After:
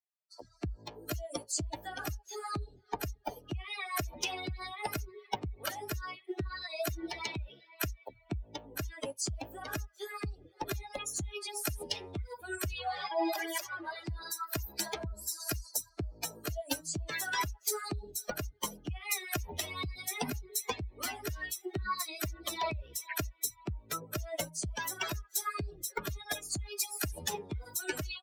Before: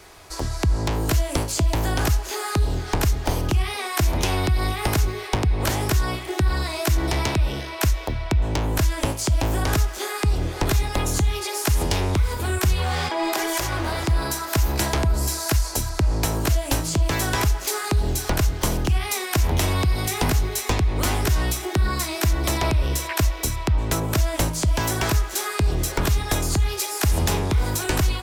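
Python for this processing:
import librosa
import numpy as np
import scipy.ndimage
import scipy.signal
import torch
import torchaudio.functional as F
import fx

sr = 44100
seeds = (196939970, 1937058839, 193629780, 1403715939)

y = fx.bin_expand(x, sr, power=3.0)
y = fx.highpass(y, sr, hz=420.0, slope=6)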